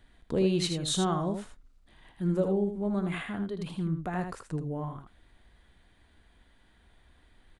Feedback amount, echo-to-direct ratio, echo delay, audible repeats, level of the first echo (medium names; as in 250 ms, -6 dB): no regular repeats, -7.0 dB, 79 ms, 1, -7.0 dB